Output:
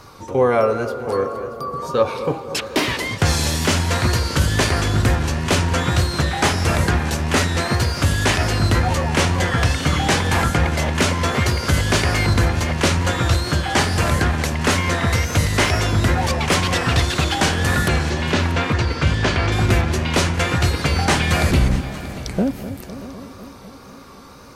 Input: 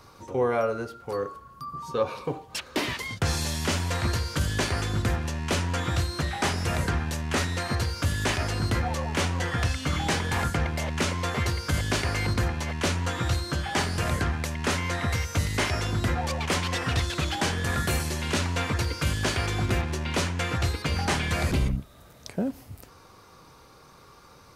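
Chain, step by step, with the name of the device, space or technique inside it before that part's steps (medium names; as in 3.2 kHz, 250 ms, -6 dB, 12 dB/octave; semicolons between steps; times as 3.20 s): 17.88–19.52 s: distance through air 120 m; multi-head tape echo (multi-head delay 211 ms, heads first and third, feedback 51%, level -17 dB; wow and flutter); tape echo 252 ms, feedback 84%, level -11.5 dB, low-pass 1.2 kHz; trim +8.5 dB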